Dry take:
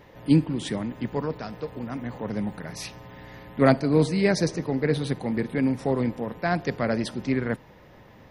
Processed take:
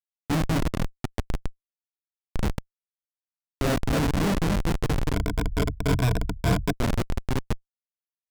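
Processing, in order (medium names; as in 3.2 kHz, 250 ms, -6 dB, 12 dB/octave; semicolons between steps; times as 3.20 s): backward echo that repeats 147 ms, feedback 43%, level -2 dB; on a send: flutter echo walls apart 4.2 m, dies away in 0.32 s; on the sum: Schmitt trigger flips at -16.5 dBFS; 5.14–6.73 s: rippled EQ curve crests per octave 1.7, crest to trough 16 dB; loudspeaker Doppler distortion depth 0.2 ms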